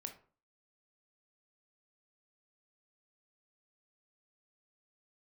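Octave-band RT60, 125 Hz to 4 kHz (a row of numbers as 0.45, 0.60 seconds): 0.45, 0.45, 0.45, 0.40, 0.35, 0.25 seconds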